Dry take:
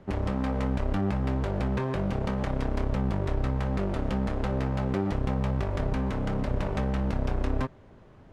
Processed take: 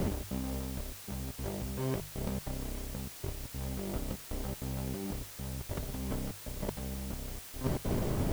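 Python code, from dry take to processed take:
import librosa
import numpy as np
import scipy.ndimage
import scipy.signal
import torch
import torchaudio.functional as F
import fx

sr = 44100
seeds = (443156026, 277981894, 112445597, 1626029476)

p1 = fx.tilt_shelf(x, sr, db=3.5, hz=970.0)
p2 = fx.sample_hold(p1, sr, seeds[0], rate_hz=2600.0, jitter_pct=0)
p3 = p1 + (p2 * librosa.db_to_amplitude(-5.0))
p4 = fx.over_compress(p3, sr, threshold_db=-31.0, ratio=-0.5)
p5 = fx.step_gate(p4, sr, bpm=195, pattern='xxx.xxxxxxxx..', floor_db=-60.0, edge_ms=4.5)
p6 = fx.quant_dither(p5, sr, seeds[1], bits=8, dither='triangular')
y = fx.hum_notches(p6, sr, base_hz=50, count=3)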